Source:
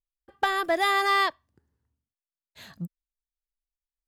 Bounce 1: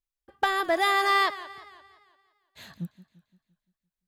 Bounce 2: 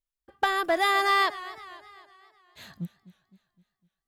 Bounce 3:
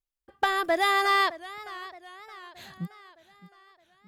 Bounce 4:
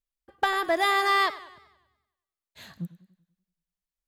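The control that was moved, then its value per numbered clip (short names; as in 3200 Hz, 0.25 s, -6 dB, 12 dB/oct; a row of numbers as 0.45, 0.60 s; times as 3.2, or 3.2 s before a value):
warbling echo, time: 172, 255, 618, 96 ms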